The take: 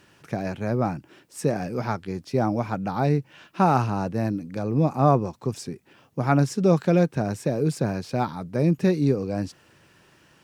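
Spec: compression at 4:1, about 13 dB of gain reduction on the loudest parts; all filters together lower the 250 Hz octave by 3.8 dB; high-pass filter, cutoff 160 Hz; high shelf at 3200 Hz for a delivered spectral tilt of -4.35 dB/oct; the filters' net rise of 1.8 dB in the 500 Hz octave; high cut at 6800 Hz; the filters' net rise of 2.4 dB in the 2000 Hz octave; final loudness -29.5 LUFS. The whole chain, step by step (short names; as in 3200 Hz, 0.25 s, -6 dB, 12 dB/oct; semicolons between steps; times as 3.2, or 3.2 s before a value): HPF 160 Hz; LPF 6800 Hz; bell 250 Hz -5 dB; bell 500 Hz +3.5 dB; bell 2000 Hz +4.5 dB; high shelf 3200 Hz -4 dB; compressor 4:1, threshold -30 dBFS; gain +5 dB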